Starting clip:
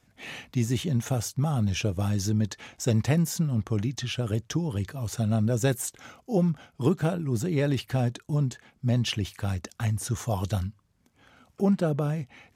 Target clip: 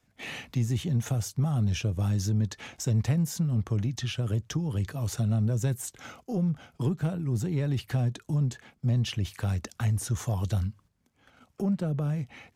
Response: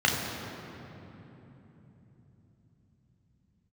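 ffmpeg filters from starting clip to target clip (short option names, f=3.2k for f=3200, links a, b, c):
-filter_complex "[0:a]agate=range=-8dB:threshold=-55dB:ratio=16:detection=peak,acrossover=split=170[a][b];[b]acompressor=threshold=-37dB:ratio=3[c];[a][c]amix=inputs=2:normalize=0,asplit=2[d][e];[e]asoftclip=type=tanh:threshold=-27.5dB,volume=-5.5dB[f];[d][f]amix=inputs=2:normalize=0,volume=-1dB"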